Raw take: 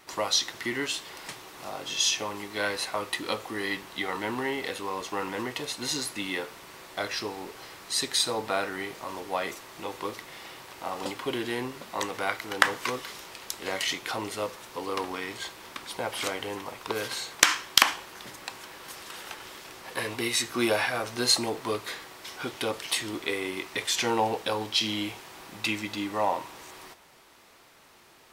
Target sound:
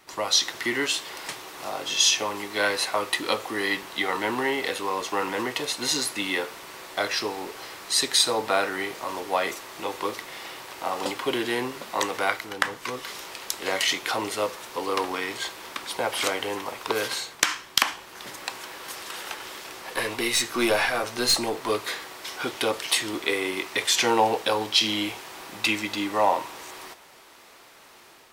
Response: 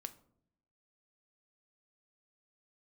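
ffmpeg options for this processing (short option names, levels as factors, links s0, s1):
-filter_complex "[0:a]acrossover=split=270[s0][s1];[s1]dynaudnorm=f=120:g=5:m=2.11[s2];[s0][s2]amix=inputs=2:normalize=0,asettb=1/sr,asplit=3[s3][s4][s5];[s3]atrim=end=19.844[s6];[s4]atrim=start=19.84:end=21.7,asetpts=PTS-STARTPTS,afade=t=in:d=0.004:c=qsin,afade=t=out:st=1.856:d=0.004:c=qsin,aeval=exprs='(tanh(4.47*val(0)+0.3)-tanh(0.3))/4.47':c=same[s7];[s5]atrim=start=21.696[s8];[s6][s7]acrossfade=d=0.004:c1=hsin:c2=qsin[s9];[s9][s8]acrossfade=d=0.004:c1=qsin:c2=hsin,volume=0.891"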